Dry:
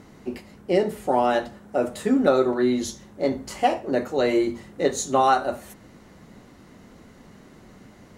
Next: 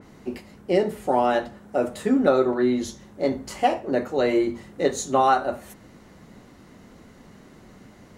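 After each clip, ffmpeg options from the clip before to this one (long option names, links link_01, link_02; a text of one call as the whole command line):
ffmpeg -i in.wav -af "adynamicequalizer=threshold=0.00794:dfrequency=3400:dqfactor=0.7:tfrequency=3400:tqfactor=0.7:attack=5:release=100:ratio=0.375:range=3.5:mode=cutabove:tftype=highshelf" out.wav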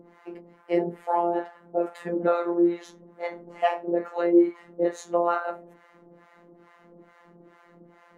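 ffmpeg -i in.wav -filter_complex "[0:a]acrossover=split=670[link_01][link_02];[link_01]aeval=exprs='val(0)*(1-1/2+1/2*cos(2*PI*2.3*n/s))':channel_layout=same[link_03];[link_02]aeval=exprs='val(0)*(1-1/2-1/2*cos(2*PI*2.3*n/s))':channel_layout=same[link_04];[link_03][link_04]amix=inputs=2:normalize=0,afftfilt=real='hypot(re,im)*cos(PI*b)':imag='0':win_size=1024:overlap=0.75,acrossover=split=240 2300:gain=0.126 1 0.126[link_05][link_06][link_07];[link_05][link_06][link_07]amix=inputs=3:normalize=0,volume=7.5dB" out.wav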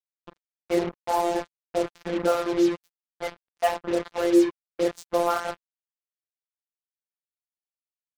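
ffmpeg -i in.wav -af "acrusher=bits=4:mix=0:aa=0.5" out.wav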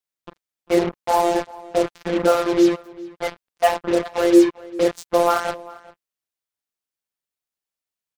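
ffmpeg -i in.wav -filter_complex "[0:a]asplit=2[link_01][link_02];[link_02]adelay=396.5,volume=-20dB,highshelf=frequency=4000:gain=-8.92[link_03];[link_01][link_03]amix=inputs=2:normalize=0,volume=6dB" out.wav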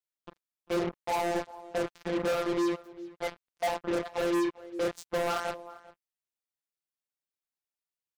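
ffmpeg -i in.wav -af "asoftclip=type=hard:threshold=-17dB,volume=-8dB" out.wav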